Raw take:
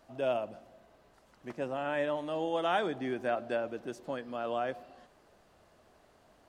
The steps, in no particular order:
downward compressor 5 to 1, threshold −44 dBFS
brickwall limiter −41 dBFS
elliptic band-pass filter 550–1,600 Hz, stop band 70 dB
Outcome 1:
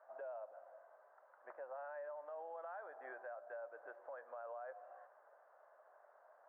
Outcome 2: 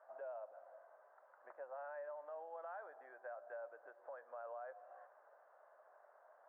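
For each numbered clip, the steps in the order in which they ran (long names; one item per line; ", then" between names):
elliptic band-pass filter, then downward compressor, then brickwall limiter
downward compressor, then elliptic band-pass filter, then brickwall limiter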